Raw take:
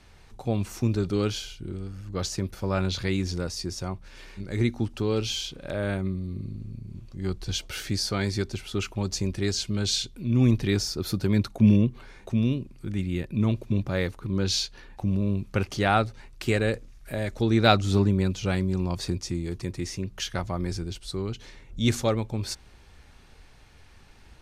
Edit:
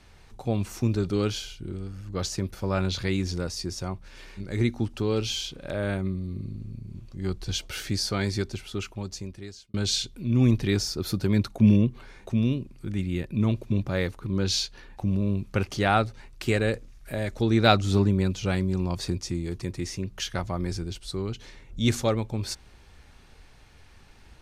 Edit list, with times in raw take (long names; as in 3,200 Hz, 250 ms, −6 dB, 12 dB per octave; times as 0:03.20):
0:08.35–0:09.74: fade out